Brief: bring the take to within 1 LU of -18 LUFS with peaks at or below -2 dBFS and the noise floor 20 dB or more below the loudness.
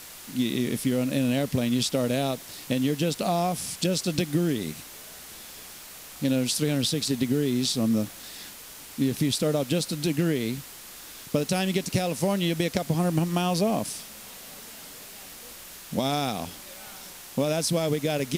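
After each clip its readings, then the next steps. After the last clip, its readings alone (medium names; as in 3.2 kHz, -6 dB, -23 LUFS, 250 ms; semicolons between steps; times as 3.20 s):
noise floor -44 dBFS; noise floor target -47 dBFS; loudness -26.5 LUFS; peak level -8.5 dBFS; loudness target -18.0 LUFS
-> noise reduction 6 dB, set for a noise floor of -44 dBFS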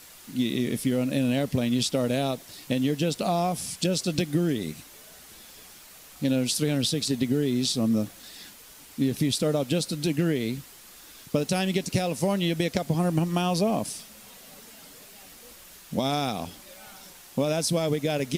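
noise floor -49 dBFS; loudness -26.5 LUFS; peak level -8.5 dBFS; loudness target -18.0 LUFS
-> trim +8.5 dB; peak limiter -2 dBFS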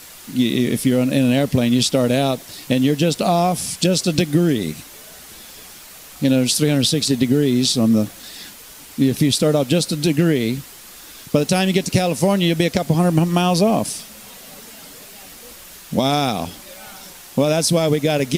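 loudness -18.0 LUFS; peak level -2.0 dBFS; noise floor -40 dBFS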